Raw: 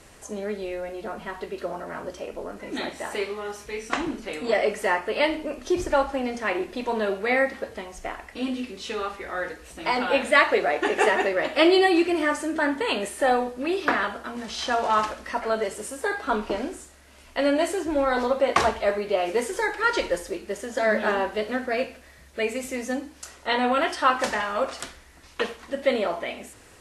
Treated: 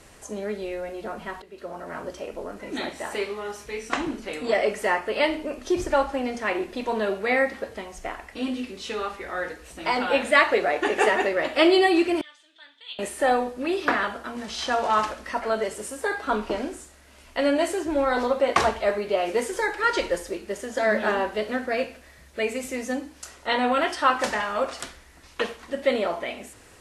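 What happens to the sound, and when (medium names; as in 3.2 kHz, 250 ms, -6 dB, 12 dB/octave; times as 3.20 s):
1.42–1.95 s: fade in, from -17.5 dB
12.21–12.99 s: band-pass filter 3.5 kHz, Q 10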